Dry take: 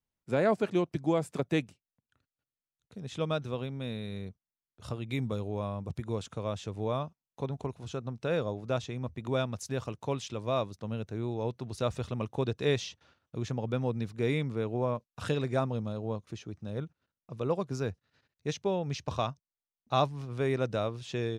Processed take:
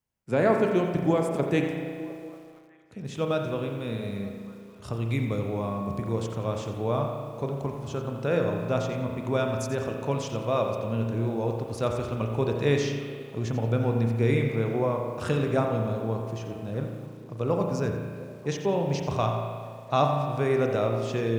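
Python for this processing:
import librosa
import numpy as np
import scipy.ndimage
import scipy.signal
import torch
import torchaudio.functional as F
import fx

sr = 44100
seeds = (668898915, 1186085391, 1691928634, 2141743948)

p1 = scipy.signal.sosfilt(scipy.signal.butter(2, 41.0, 'highpass', fs=sr, output='sos'), x)
p2 = fx.peak_eq(p1, sr, hz=3700.0, db=-5.0, octaves=0.43)
p3 = p2 + fx.echo_stepped(p2, sr, ms=234, hz=190.0, octaves=0.7, feedback_pct=70, wet_db=-11, dry=0)
p4 = fx.rev_spring(p3, sr, rt60_s=1.8, pass_ms=(35,), chirp_ms=65, drr_db=3.0)
p5 = fx.echo_crushed(p4, sr, ms=87, feedback_pct=35, bits=9, wet_db=-11.0)
y = p5 * 10.0 ** (3.5 / 20.0)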